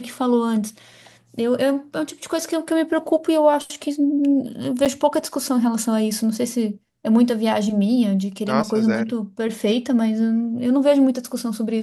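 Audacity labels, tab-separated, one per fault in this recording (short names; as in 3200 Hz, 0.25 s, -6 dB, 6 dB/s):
4.850000	4.860000	gap 7.5 ms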